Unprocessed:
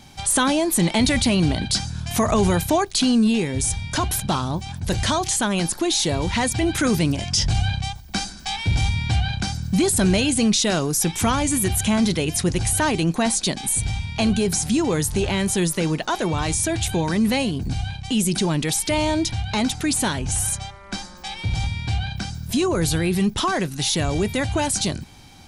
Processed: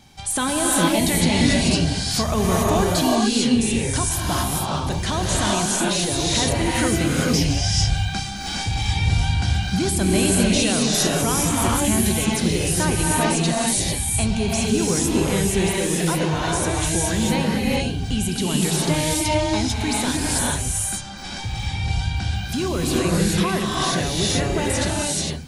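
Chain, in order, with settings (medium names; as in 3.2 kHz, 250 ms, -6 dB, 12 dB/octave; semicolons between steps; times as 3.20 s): gated-style reverb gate 470 ms rising, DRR -4.5 dB; trim -4.5 dB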